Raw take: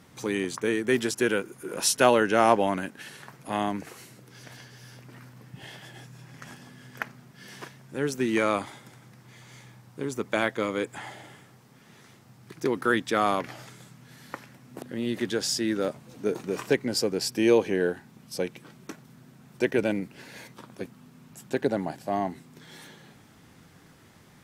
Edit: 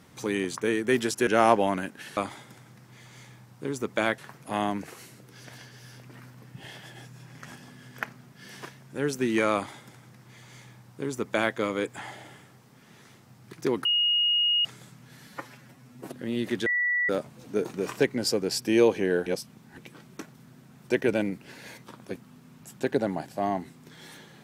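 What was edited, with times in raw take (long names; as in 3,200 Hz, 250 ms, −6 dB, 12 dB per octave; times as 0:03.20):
0:01.27–0:02.27: remove
0:08.53–0:10.54: duplicate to 0:03.17
0:12.84–0:13.64: beep over 2,870 Hz −20.5 dBFS
0:14.26–0:14.84: time-stretch 1.5×
0:15.36–0:15.79: beep over 1,950 Hz −22.5 dBFS
0:17.96–0:18.48: reverse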